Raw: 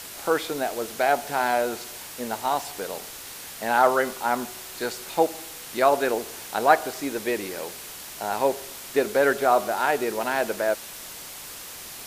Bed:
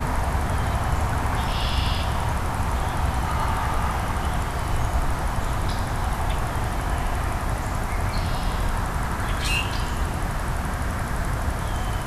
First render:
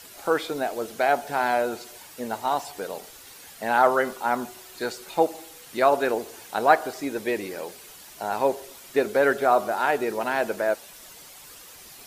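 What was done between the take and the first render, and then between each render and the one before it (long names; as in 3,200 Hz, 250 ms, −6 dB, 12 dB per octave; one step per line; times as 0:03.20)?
broadband denoise 9 dB, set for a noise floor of −40 dBFS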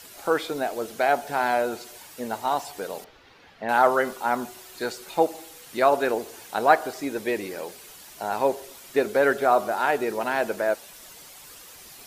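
0:03.04–0:03.69: high-frequency loss of the air 270 metres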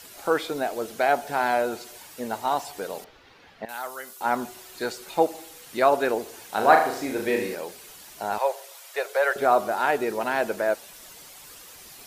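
0:03.65–0:04.21: first-order pre-emphasis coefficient 0.9
0:06.49–0:07.55: flutter between parallel walls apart 6.4 metres, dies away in 0.52 s
0:08.38–0:09.36: Butterworth high-pass 510 Hz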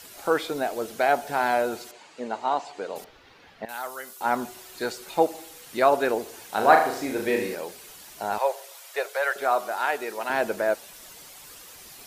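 0:01.91–0:02.96: loudspeaker in its box 220–6,300 Hz, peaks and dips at 1,700 Hz −3 dB, 3,500 Hz −4 dB, 5,500 Hz −9 dB
0:09.09–0:10.30: high-pass filter 820 Hz 6 dB per octave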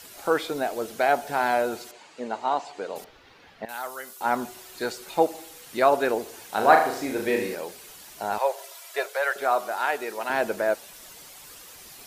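0:08.58–0:09.05: comb filter 3 ms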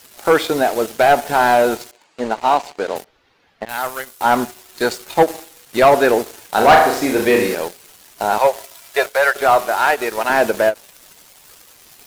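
leveller curve on the samples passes 3
every ending faded ahead of time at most 430 dB per second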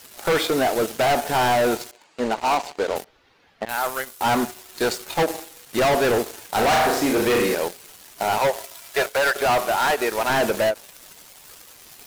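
hard clipping −16.5 dBFS, distortion −7 dB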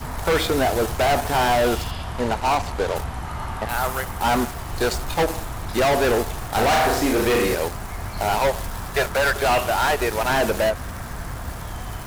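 mix in bed −6 dB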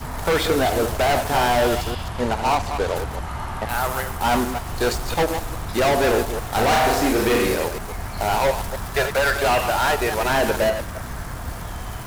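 delay that plays each chunk backwards 139 ms, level −8 dB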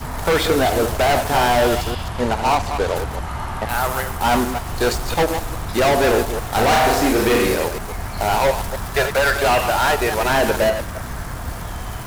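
level +2.5 dB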